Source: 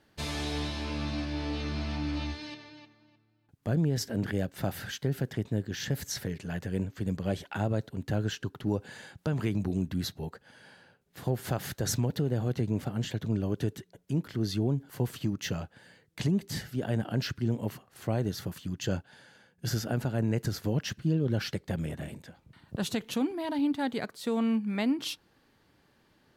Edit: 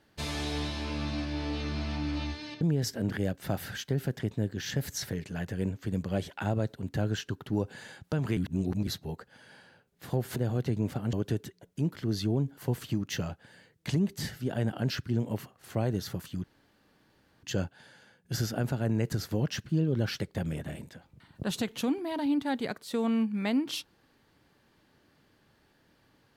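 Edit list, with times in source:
2.61–3.75 s: delete
9.51–10.01 s: reverse
11.50–12.27 s: delete
13.04–13.45 s: delete
18.76 s: insert room tone 0.99 s

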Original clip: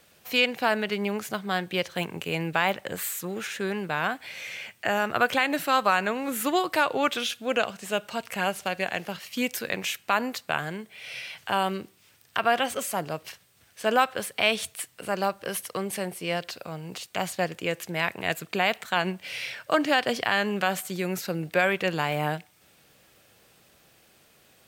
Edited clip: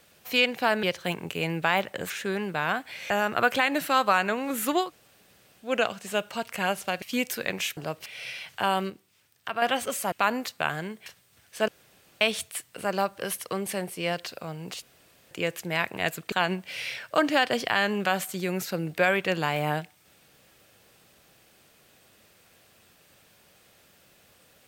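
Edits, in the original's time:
0.83–1.74 s: delete
3.01–3.45 s: delete
4.45–4.88 s: delete
6.63–7.43 s: room tone, crossfade 0.16 s
8.80–9.26 s: delete
10.01–10.95 s: swap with 13.01–13.30 s
11.79–12.51 s: gain -6.5 dB
13.92–14.45 s: room tone
17.06–17.55 s: room tone
18.56–18.88 s: delete

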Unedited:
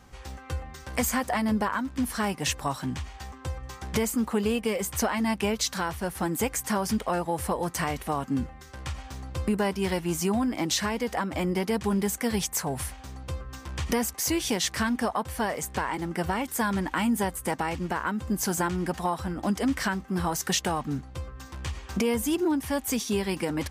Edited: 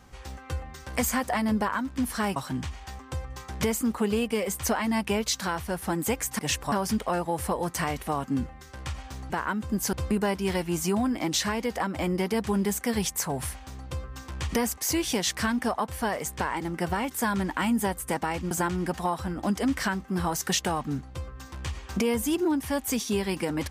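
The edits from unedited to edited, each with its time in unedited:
2.36–2.69 s: move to 6.72 s
17.88–18.51 s: move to 9.30 s

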